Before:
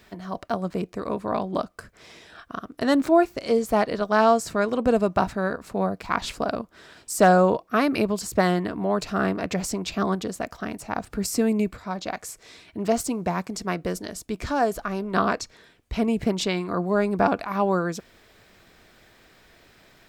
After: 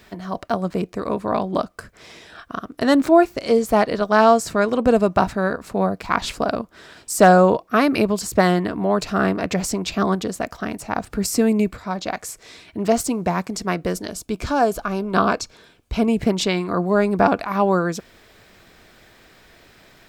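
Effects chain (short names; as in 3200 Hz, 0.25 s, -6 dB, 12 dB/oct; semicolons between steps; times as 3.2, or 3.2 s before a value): 14.07–16.08 notch 1900 Hz, Q 6.1; gain +4.5 dB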